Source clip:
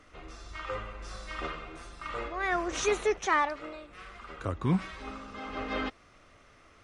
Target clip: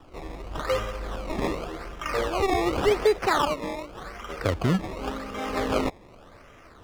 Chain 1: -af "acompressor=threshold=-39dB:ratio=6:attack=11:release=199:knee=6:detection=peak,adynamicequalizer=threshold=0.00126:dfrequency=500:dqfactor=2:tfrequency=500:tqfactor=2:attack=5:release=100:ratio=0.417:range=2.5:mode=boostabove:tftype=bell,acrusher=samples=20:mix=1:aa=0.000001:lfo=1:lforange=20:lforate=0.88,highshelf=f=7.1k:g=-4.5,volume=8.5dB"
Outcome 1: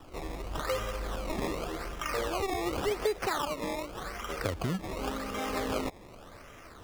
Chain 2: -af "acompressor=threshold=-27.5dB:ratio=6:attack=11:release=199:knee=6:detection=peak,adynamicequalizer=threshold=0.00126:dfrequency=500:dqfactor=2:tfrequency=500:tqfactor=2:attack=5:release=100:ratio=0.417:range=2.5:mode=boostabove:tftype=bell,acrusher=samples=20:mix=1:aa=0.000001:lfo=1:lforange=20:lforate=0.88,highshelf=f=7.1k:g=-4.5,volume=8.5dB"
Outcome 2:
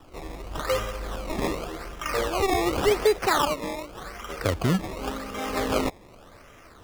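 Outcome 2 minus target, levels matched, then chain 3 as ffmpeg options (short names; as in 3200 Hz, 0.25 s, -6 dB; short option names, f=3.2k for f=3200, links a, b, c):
8000 Hz band +5.0 dB
-af "acompressor=threshold=-27.5dB:ratio=6:attack=11:release=199:knee=6:detection=peak,adynamicequalizer=threshold=0.00126:dfrequency=500:dqfactor=2:tfrequency=500:tqfactor=2:attack=5:release=100:ratio=0.417:range=2.5:mode=boostabove:tftype=bell,acrusher=samples=20:mix=1:aa=0.000001:lfo=1:lforange=20:lforate=0.88,highshelf=f=7.1k:g=-15.5,volume=8.5dB"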